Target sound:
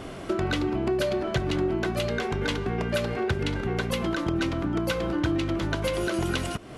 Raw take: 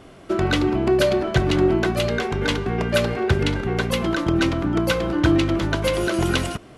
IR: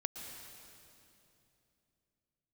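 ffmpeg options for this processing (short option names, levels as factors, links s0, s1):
-af "acompressor=threshold=0.0126:ratio=2.5,volume=2.24"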